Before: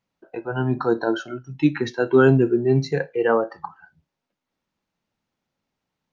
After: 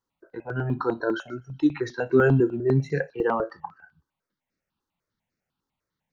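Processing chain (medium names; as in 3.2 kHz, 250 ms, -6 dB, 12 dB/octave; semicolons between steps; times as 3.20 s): feedback echo behind a high-pass 125 ms, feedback 43%, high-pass 2.8 kHz, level -22 dB; stepped phaser 10 Hz 640–3200 Hz; trim -1 dB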